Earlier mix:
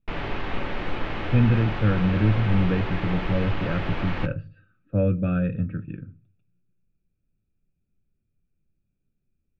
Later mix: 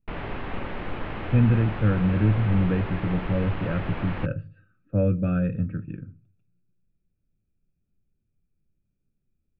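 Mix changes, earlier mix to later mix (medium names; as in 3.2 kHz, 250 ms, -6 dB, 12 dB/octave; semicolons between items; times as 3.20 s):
background: send -9.5 dB; master: add distance through air 250 m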